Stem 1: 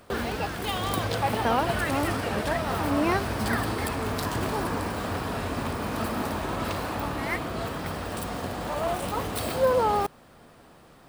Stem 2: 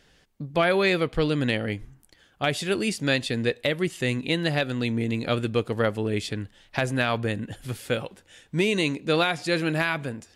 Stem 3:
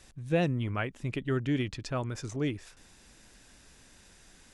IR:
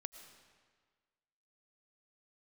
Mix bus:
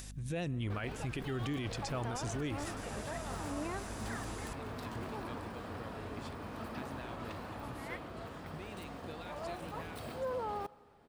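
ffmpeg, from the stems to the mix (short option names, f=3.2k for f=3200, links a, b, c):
-filter_complex "[0:a]highshelf=f=5.5k:g=-9,adelay=600,volume=-15.5dB,asplit=2[a][b];[b]volume=-8dB[c];[1:a]acompressor=threshold=-31dB:ratio=6,volume=-15.5dB[d];[2:a]highshelf=f=4.8k:g=10.5,acompressor=mode=upward:threshold=-47dB:ratio=2.5,aeval=exprs='val(0)+0.00447*(sin(2*PI*50*n/s)+sin(2*PI*2*50*n/s)/2+sin(2*PI*3*50*n/s)/3+sin(2*PI*4*50*n/s)/4+sin(2*PI*5*50*n/s)/5)':c=same,volume=-1.5dB,asplit=3[e][f][g];[f]volume=-13.5dB[h];[g]apad=whole_len=456720[i];[d][i]sidechaincompress=threshold=-53dB:ratio=8:attack=16:release=390[j];[3:a]atrim=start_sample=2205[k];[c][h]amix=inputs=2:normalize=0[l];[l][k]afir=irnorm=-1:irlink=0[m];[a][j][e][m]amix=inputs=4:normalize=0,alimiter=level_in=5.5dB:limit=-24dB:level=0:latency=1:release=28,volume=-5.5dB"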